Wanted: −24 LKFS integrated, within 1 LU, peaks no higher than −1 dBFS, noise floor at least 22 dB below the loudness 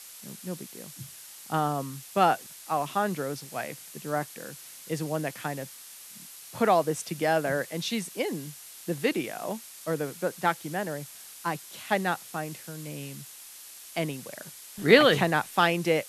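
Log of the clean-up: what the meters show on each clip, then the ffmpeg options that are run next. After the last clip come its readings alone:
background noise floor −47 dBFS; target noise floor −51 dBFS; integrated loudness −28.5 LKFS; sample peak −4.0 dBFS; target loudness −24.0 LKFS
→ -af "afftdn=noise_reduction=6:noise_floor=-47"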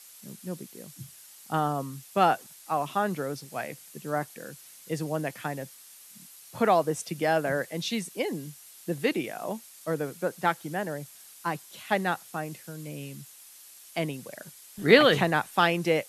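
background noise floor −51 dBFS; integrated loudness −28.5 LKFS; sample peak −4.0 dBFS; target loudness −24.0 LKFS
→ -af "volume=4.5dB,alimiter=limit=-1dB:level=0:latency=1"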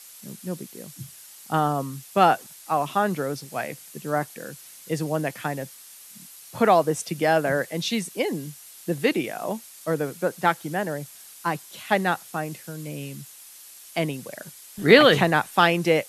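integrated loudness −24.0 LKFS; sample peak −1.0 dBFS; background noise floor −46 dBFS

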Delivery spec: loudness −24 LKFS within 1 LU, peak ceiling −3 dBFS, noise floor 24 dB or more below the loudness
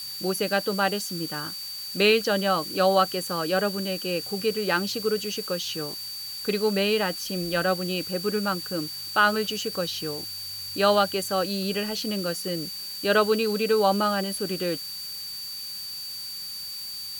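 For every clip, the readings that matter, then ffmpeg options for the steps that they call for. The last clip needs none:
interfering tone 4,600 Hz; level of the tone −34 dBFS; background noise floor −36 dBFS; target noise floor −50 dBFS; integrated loudness −26.0 LKFS; sample peak −7.0 dBFS; target loudness −24.0 LKFS
→ -af "bandreject=frequency=4600:width=30"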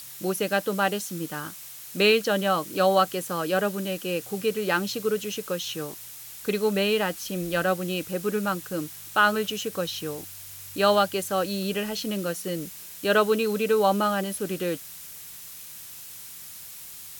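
interfering tone none found; background noise floor −42 dBFS; target noise floor −50 dBFS
→ -af "afftdn=noise_reduction=8:noise_floor=-42"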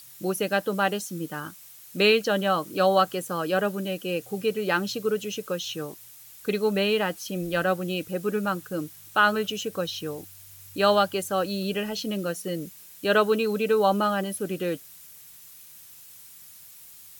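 background noise floor −48 dBFS; target noise floor −50 dBFS
→ -af "afftdn=noise_reduction=6:noise_floor=-48"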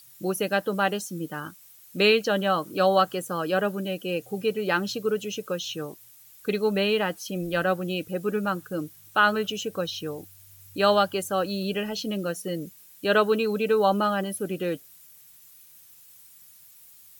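background noise floor −52 dBFS; integrated loudness −26.0 LKFS; sample peak −7.5 dBFS; target loudness −24.0 LKFS
→ -af "volume=2dB"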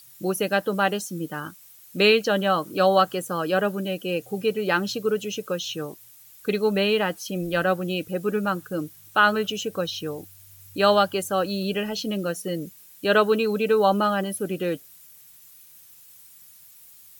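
integrated loudness −24.0 LKFS; sample peak −5.5 dBFS; background noise floor −50 dBFS

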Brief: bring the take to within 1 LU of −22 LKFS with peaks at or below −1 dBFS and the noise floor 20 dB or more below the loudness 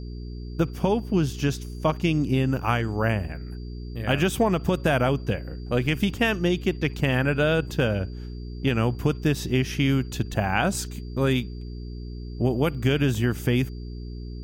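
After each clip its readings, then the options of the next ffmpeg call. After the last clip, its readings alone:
mains hum 60 Hz; hum harmonics up to 420 Hz; level of the hum −32 dBFS; interfering tone 4,700 Hz; level of the tone −54 dBFS; integrated loudness −25.0 LKFS; sample peak −8.5 dBFS; target loudness −22.0 LKFS
→ -af "bandreject=frequency=60:width_type=h:width=4,bandreject=frequency=120:width_type=h:width=4,bandreject=frequency=180:width_type=h:width=4,bandreject=frequency=240:width_type=h:width=4,bandreject=frequency=300:width_type=h:width=4,bandreject=frequency=360:width_type=h:width=4,bandreject=frequency=420:width_type=h:width=4"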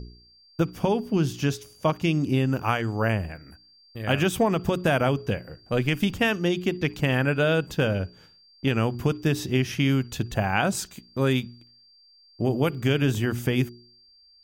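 mains hum none found; interfering tone 4,700 Hz; level of the tone −54 dBFS
→ -af "bandreject=frequency=4700:width=30"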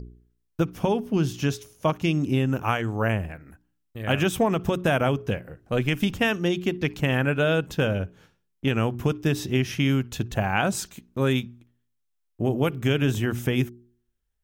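interfering tone none found; integrated loudness −25.5 LKFS; sample peak −9.0 dBFS; target loudness −22.0 LKFS
→ -af "volume=3.5dB"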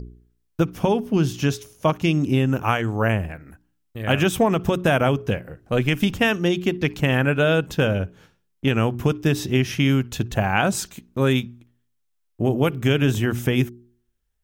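integrated loudness −22.0 LKFS; sample peak −5.5 dBFS; background noise floor −71 dBFS

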